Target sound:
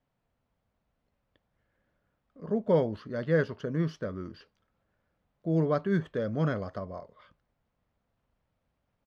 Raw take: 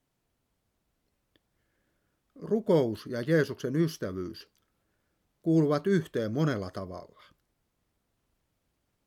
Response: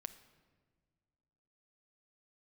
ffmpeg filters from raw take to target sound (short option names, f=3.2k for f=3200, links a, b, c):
-af "firequalizer=gain_entry='entry(230,0);entry(340,-7);entry(520,2);entry(12000,-29)':delay=0.05:min_phase=1"